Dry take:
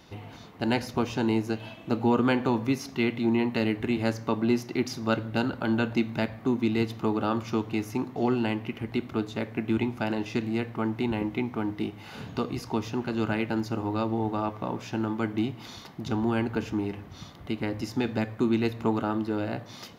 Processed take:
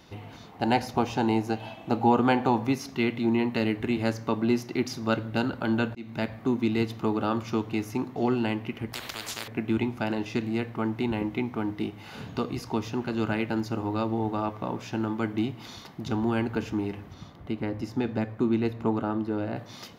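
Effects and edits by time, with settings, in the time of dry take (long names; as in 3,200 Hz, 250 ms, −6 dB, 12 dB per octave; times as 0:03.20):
0:00.49–0:02.75: parametric band 790 Hz +10.5 dB 0.39 octaves
0:05.95–0:06.38: fade in equal-power
0:08.93–0:09.48: every bin compressed towards the loudest bin 10 to 1
0:17.14–0:19.56: high-shelf EQ 2,100 Hz −8.5 dB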